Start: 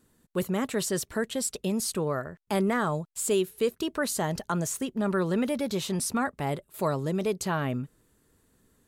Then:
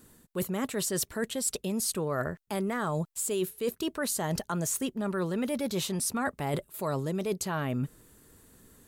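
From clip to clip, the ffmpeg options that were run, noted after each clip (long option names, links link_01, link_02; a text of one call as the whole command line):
ffmpeg -i in.wav -af "highshelf=frequency=9300:gain=7,areverse,acompressor=threshold=-35dB:ratio=10,areverse,volume=7.5dB" out.wav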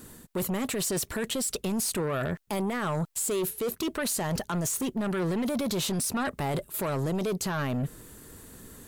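ffmpeg -i in.wav -af "alimiter=level_in=3.5dB:limit=-24dB:level=0:latency=1:release=34,volume=-3.5dB,aeval=exprs='0.0422*sin(PI/2*1.41*val(0)/0.0422)':channel_layout=same,volume=2.5dB" out.wav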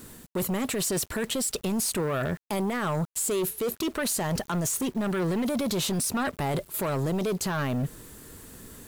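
ffmpeg -i in.wav -af "acrusher=bits=8:mix=0:aa=0.000001,volume=1.5dB" out.wav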